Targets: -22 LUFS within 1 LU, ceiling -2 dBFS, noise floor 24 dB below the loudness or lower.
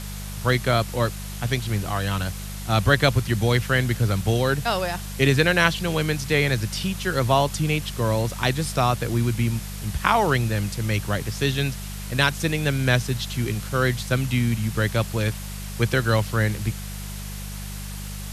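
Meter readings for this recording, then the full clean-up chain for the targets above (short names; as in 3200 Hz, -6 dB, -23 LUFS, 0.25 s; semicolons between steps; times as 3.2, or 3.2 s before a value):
hum 50 Hz; harmonics up to 200 Hz; hum level -31 dBFS; noise floor -33 dBFS; noise floor target -47 dBFS; loudness -23.0 LUFS; peak -2.0 dBFS; loudness target -22.0 LUFS
-> de-hum 50 Hz, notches 4; denoiser 14 dB, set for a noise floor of -33 dBFS; gain +1 dB; limiter -2 dBFS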